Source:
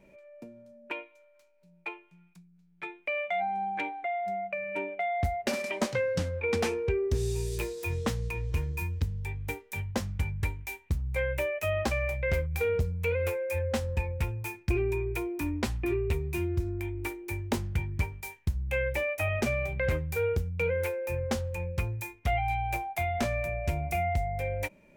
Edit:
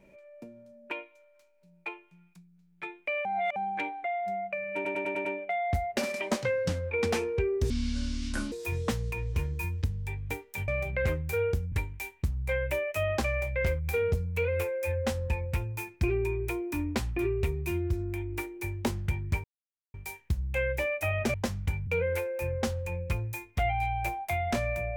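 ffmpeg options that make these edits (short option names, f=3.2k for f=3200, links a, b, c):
-filter_complex "[0:a]asplit=15[a][b][c][d][e][f][g][h][i][j][k][l][m][n][o];[a]atrim=end=3.252[p];[b]atrim=start=3.248:end=3.562,asetpts=PTS-STARTPTS,areverse[q];[c]atrim=start=3.558:end=4.852[r];[d]atrim=start=4.748:end=4.852[s];[e]atrim=start=4.748:end=4.852[t];[f]atrim=start=4.748:end=4.852[u];[g]atrim=start=4.748:end=4.852[v];[h]atrim=start=4.748:end=7.204[w];[i]atrim=start=7.2:end=7.7,asetpts=PTS-STARTPTS,asetrate=26901,aresample=44100[x];[j]atrim=start=7.696:end=9.862[y];[k]atrim=start=19.508:end=20.552[z];[l]atrim=start=10.388:end=18.11,asetpts=PTS-STARTPTS,afade=t=out:st=7.718:d=0.004:c=hsin,apad=pad_dur=0.5[aa];[m]atrim=start=18.11:end=19.512,asetpts=PTS-STARTPTS,afade=t=in:d=0.004:c=hsin[ab];[n]atrim=start=9.858:end=10.392[ac];[o]atrim=start=20.548[ad];[p][q]acrossfade=d=0.004:c1=hsin:c2=hsin[ae];[ae][r]acrossfade=d=0.004:c1=hsin:c2=hsin[af];[af][s]acrossfade=d=0.004:c1=hsin:c2=hsin[ag];[ag][t]acrossfade=d=0.004:c1=hsin:c2=hsin[ah];[ah][u]acrossfade=d=0.004:c1=hsin:c2=hsin[ai];[ai][v]acrossfade=d=0.004:c1=hsin:c2=hsin[aj];[aj][w]acrossfade=d=0.004:c1=hsin:c2=hsin[ak];[ak][x]acrossfade=d=0.004:c1=hsin:c2=hsin[al];[al][y]acrossfade=d=0.004:c1=hsin:c2=hsin[am];[am][z]acrossfade=d=0.004:c1=hsin:c2=hsin[an];[aa][ab]concat=n=2:v=0:a=1[ao];[an][ao]acrossfade=d=0.004:c1=hsin:c2=hsin[ap];[ap][ac]acrossfade=d=0.004:c1=hsin:c2=hsin[aq];[aq][ad]acrossfade=d=0.004:c1=hsin:c2=hsin"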